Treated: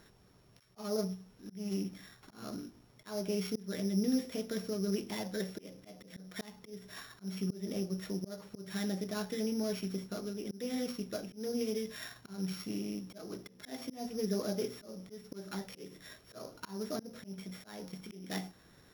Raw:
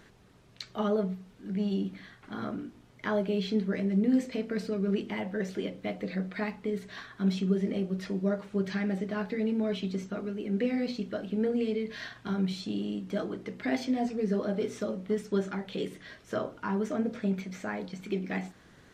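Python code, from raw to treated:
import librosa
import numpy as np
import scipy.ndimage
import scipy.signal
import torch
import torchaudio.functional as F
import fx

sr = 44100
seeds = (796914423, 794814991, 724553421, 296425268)

y = np.r_[np.sort(x[:len(x) // 8 * 8].reshape(-1, 8), axis=1).ravel(), x[len(x) // 8 * 8:]]
y = fx.peak_eq(y, sr, hz=250.0, db=-2.0, octaves=0.62)
y = fx.auto_swell(y, sr, attack_ms=240.0)
y = F.gain(torch.from_numpy(y), -4.0).numpy()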